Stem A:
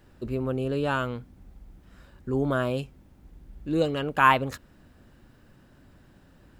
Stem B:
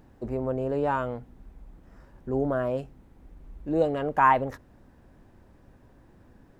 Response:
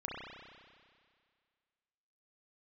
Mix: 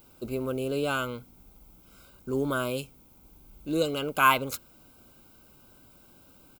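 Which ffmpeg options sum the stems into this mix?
-filter_complex "[0:a]aemphasis=mode=production:type=bsi,volume=-0.5dB[link_01];[1:a]acrusher=bits=7:mode=log:mix=0:aa=0.000001,adelay=0.6,volume=-9dB[link_02];[link_01][link_02]amix=inputs=2:normalize=0,asuperstop=centerf=1800:order=12:qfactor=4.2"

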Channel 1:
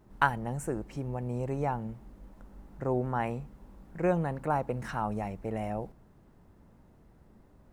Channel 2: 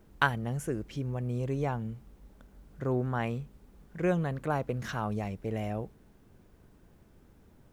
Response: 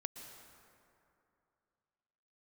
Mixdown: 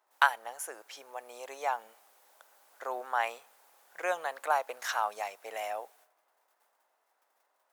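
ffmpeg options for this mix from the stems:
-filter_complex "[0:a]volume=-4.5dB,asplit=2[link_01][link_02];[1:a]aemphasis=mode=production:type=cd,dynaudnorm=framelen=230:gausssize=9:maxgain=4.5dB,volume=-2dB,asplit=2[link_03][link_04];[link_04]volume=-23.5dB[link_05];[link_02]apad=whole_len=340770[link_06];[link_03][link_06]sidechaingate=range=-33dB:threshold=-59dB:ratio=16:detection=peak[link_07];[2:a]atrim=start_sample=2205[link_08];[link_05][link_08]afir=irnorm=-1:irlink=0[link_09];[link_01][link_07][link_09]amix=inputs=3:normalize=0,highpass=frequency=690:width=0.5412,highpass=frequency=690:width=1.3066"

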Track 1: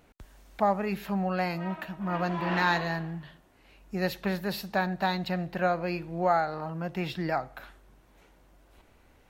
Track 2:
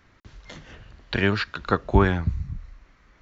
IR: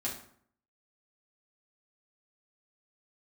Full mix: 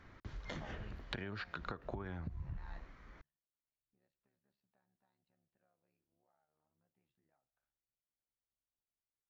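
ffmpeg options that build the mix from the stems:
-filter_complex "[0:a]acompressor=threshold=-36dB:ratio=2.5,tremolo=f=71:d=0.889,flanger=delay=7.8:depth=2.3:regen=-62:speed=0.94:shape=sinusoidal,volume=-9dB[link_01];[1:a]bandreject=frequency=2700:width=18,alimiter=limit=-12.5dB:level=0:latency=1:release=127,acompressor=threshold=-26dB:ratio=6,volume=0dB,asplit=2[link_02][link_03];[link_03]apad=whole_len=410089[link_04];[link_01][link_04]sidechaingate=range=-29dB:threshold=-46dB:ratio=16:detection=peak[link_05];[link_05][link_02]amix=inputs=2:normalize=0,highshelf=frequency=4000:gain=-11,acompressor=threshold=-39dB:ratio=12"

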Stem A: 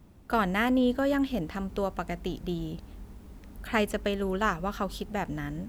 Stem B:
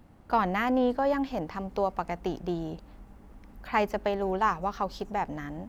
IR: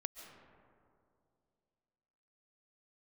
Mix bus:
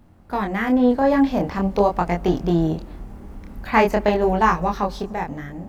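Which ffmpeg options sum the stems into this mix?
-filter_complex "[0:a]volume=-4dB[link_01];[1:a]lowshelf=frequency=350:gain=3,dynaudnorm=framelen=220:gausssize=9:maxgain=9dB,volume=3dB,asplit=2[link_02][link_03];[link_03]volume=-17dB[link_04];[2:a]atrim=start_sample=2205[link_05];[link_04][link_05]afir=irnorm=-1:irlink=0[link_06];[link_01][link_02][link_06]amix=inputs=3:normalize=0,flanger=delay=22.5:depth=6.8:speed=0.45"

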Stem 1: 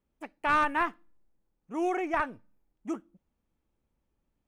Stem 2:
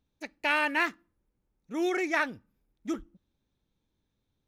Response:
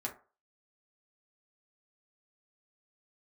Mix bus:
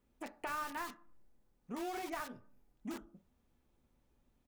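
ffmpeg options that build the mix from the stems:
-filter_complex "[0:a]acompressor=threshold=-43dB:ratio=2,volume=0dB,asplit=2[link_01][link_02];[link_02]volume=-3dB[link_03];[1:a]bandreject=frequency=2300:width=6.6,aeval=exprs='(mod(31.6*val(0)+1,2)-1)/31.6':channel_layout=same,adelay=24,volume=-9dB[link_04];[2:a]atrim=start_sample=2205[link_05];[link_03][link_05]afir=irnorm=-1:irlink=0[link_06];[link_01][link_04][link_06]amix=inputs=3:normalize=0,acompressor=threshold=-44dB:ratio=2"

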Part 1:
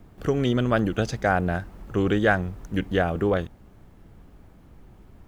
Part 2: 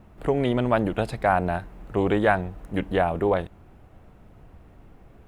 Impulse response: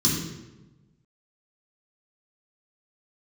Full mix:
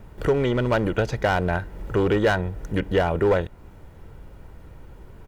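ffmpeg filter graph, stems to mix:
-filter_complex "[0:a]acompressor=threshold=-35dB:ratio=2.5,volume=3dB[link_01];[1:a]acrossover=split=2500[link_02][link_03];[link_03]acompressor=threshold=-47dB:ratio=4:attack=1:release=60[link_04];[link_02][link_04]amix=inputs=2:normalize=0,equalizer=frequency=1700:width=1.5:gain=2.5,asoftclip=type=hard:threshold=-18.5dB,volume=0dB[link_05];[link_01][link_05]amix=inputs=2:normalize=0,aecho=1:1:2.1:0.37"

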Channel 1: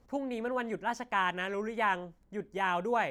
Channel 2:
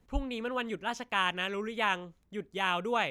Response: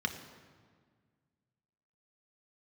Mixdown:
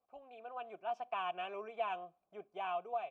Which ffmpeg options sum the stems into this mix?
-filter_complex "[0:a]bandreject=frequency=6600:width=5.8,volume=-5dB[link_01];[1:a]volume=-1,adelay=3.7,volume=-11.5dB[link_02];[link_01][link_02]amix=inputs=2:normalize=0,dynaudnorm=framelen=220:gausssize=7:maxgain=9dB,asplit=3[link_03][link_04][link_05];[link_03]bandpass=frequency=730:width_type=q:width=8,volume=0dB[link_06];[link_04]bandpass=frequency=1090:width_type=q:width=8,volume=-6dB[link_07];[link_05]bandpass=frequency=2440:width_type=q:width=8,volume=-9dB[link_08];[link_06][link_07][link_08]amix=inputs=3:normalize=0,acrossover=split=450|3000[link_09][link_10][link_11];[link_10]acompressor=threshold=-35dB:ratio=6[link_12];[link_09][link_12][link_11]amix=inputs=3:normalize=0"

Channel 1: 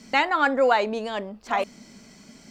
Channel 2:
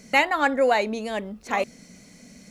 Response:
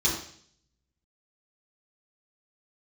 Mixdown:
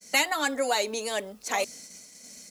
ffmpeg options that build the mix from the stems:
-filter_complex "[0:a]volume=-11dB[link_01];[1:a]equalizer=frequency=83:width=1.2:gain=4.5,acrossover=split=370|3000[link_02][link_03][link_04];[link_03]acompressor=threshold=-26dB:ratio=6[link_05];[link_02][link_05][link_04]amix=inputs=3:normalize=0,adelay=4.9,volume=-1dB[link_06];[link_01][link_06]amix=inputs=2:normalize=0,agate=range=-33dB:threshold=-44dB:ratio=3:detection=peak,bass=frequency=250:gain=-14,treble=frequency=4000:gain=14"

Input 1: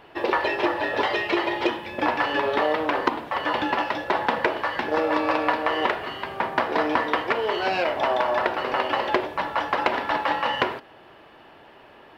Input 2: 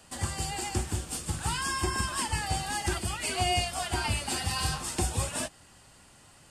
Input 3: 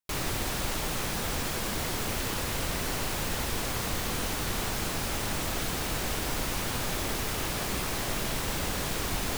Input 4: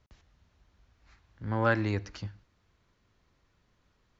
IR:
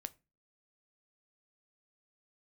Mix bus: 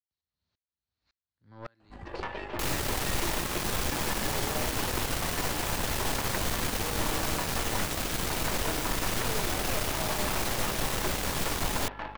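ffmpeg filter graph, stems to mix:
-filter_complex "[0:a]acrossover=split=3500[link_01][link_02];[link_02]acompressor=threshold=-55dB:ratio=4:attack=1:release=60[link_03];[link_01][link_03]amix=inputs=2:normalize=0,aeval=exprs='val(0)+0.0224*(sin(2*PI*50*n/s)+sin(2*PI*2*50*n/s)/2+sin(2*PI*3*50*n/s)/3+sin(2*PI*4*50*n/s)/4+sin(2*PI*5*50*n/s)/5)':channel_layout=same,adelay=1900,volume=-15dB[link_04];[1:a]lowpass=1600,acompressor=threshold=-36dB:ratio=4,adelay=1800,volume=-7.5dB[link_05];[2:a]adelay=2500,volume=-0.5dB[link_06];[3:a]highpass=77,equalizer=frequency=4200:width=2.6:gain=14,aeval=exprs='val(0)*pow(10,-34*if(lt(mod(-1.8*n/s,1),2*abs(-1.8)/1000),1-mod(-1.8*n/s,1)/(2*abs(-1.8)/1000),(mod(-1.8*n/s,1)-2*abs(-1.8)/1000)/(1-2*abs(-1.8)/1000))/20)':channel_layout=same,volume=-12dB[link_07];[link_04][link_05][link_06][link_07]amix=inputs=4:normalize=0,aeval=exprs='0.126*(cos(1*acos(clip(val(0)/0.126,-1,1)))-cos(1*PI/2))+0.0158*(cos(8*acos(clip(val(0)/0.126,-1,1)))-cos(8*PI/2))':channel_layout=same"

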